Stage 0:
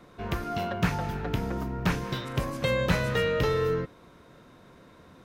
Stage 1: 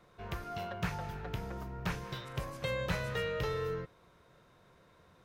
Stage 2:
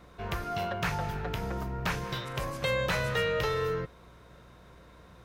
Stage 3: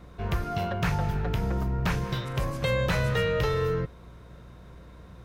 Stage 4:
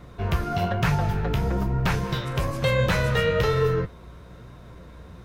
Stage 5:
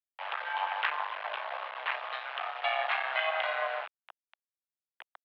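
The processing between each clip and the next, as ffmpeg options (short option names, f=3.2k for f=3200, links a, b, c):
-af "equalizer=f=260:t=o:w=0.66:g=-10,volume=-8dB"
-filter_complex "[0:a]acrossover=split=520|1700[a][b][c];[a]alimiter=level_in=11dB:limit=-24dB:level=0:latency=1,volume=-11dB[d];[d][b][c]amix=inputs=3:normalize=0,aeval=exprs='val(0)+0.000631*(sin(2*PI*60*n/s)+sin(2*PI*2*60*n/s)/2+sin(2*PI*3*60*n/s)/3+sin(2*PI*4*60*n/s)/4+sin(2*PI*5*60*n/s)/5)':c=same,volume=7.5dB"
-af "lowshelf=f=310:g=9"
-af "flanger=delay=6.5:depth=8.1:regen=52:speed=1.1:shape=triangular,volume=8dB"
-af "acrusher=bits=3:dc=4:mix=0:aa=0.000001,highpass=f=530:t=q:w=0.5412,highpass=f=530:t=q:w=1.307,lowpass=f=3.1k:t=q:w=0.5176,lowpass=f=3.1k:t=q:w=0.7071,lowpass=f=3.1k:t=q:w=1.932,afreqshift=170"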